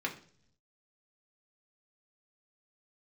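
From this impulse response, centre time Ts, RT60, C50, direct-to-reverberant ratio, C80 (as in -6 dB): 12 ms, no single decay rate, 12.5 dB, -1.0 dB, 16.5 dB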